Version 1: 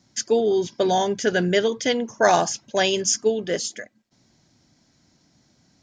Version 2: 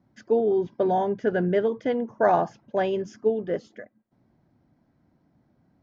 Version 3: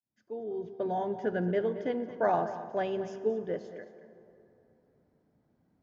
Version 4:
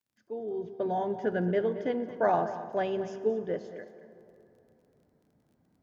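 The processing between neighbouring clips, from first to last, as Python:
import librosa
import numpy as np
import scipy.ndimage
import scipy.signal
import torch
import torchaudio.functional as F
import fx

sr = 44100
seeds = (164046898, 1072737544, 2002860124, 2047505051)

y1 = scipy.signal.sosfilt(scipy.signal.butter(2, 1200.0, 'lowpass', fs=sr, output='sos'), x)
y1 = F.gain(torch.from_numpy(y1), -2.0).numpy()
y2 = fx.fade_in_head(y1, sr, length_s=1.16)
y2 = y2 + 10.0 ** (-14.0 / 20.0) * np.pad(y2, (int(225 * sr / 1000.0), 0))[:len(y2)]
y2 = fx.rev_plate(y2, sr, seeds[0], rt60_s=3.0, hf_ratio=0.6, predelay_ms=0, drr_db=12.0)
y2 = F.gain(torch.from_numpy(y2), -7.0).numpy()
y3 = fx.dmg_crackle(y2, sr, seeds[1], per_s=20.0, level_db=-59.0)
y3 = F.gain(torch.from_numpy(y3), 1.5).numpy()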